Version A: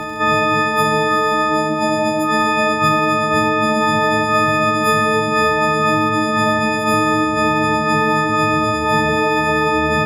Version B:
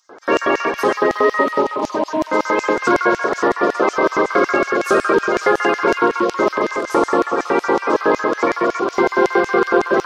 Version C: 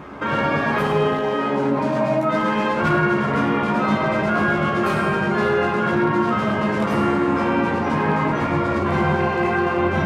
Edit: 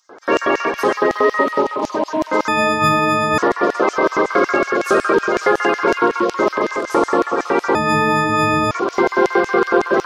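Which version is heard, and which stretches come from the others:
B
2.48–3.38 from A
7.75–8.71 from A
not used: C

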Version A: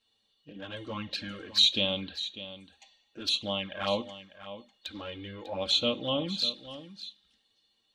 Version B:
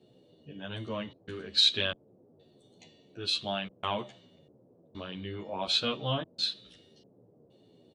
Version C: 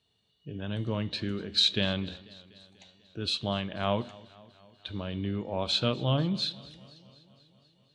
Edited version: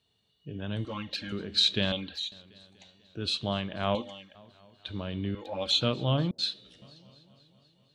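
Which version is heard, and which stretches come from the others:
C
0.85–1.32 from A
1.92–2.32 from A
3.95–4.35 from A
5.35–5.81 from A
6.31–6.82 from B

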